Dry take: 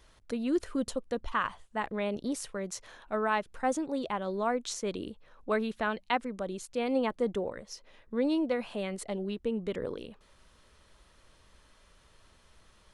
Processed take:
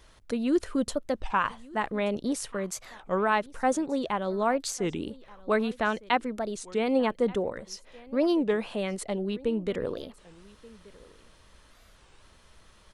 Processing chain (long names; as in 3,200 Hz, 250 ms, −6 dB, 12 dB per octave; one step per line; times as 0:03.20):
on a send: single-tap delay 1,180 ms −22.5 dB
on the sum: wow of a warped record 33 1/3 rpm, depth 250 cents
level +4 dB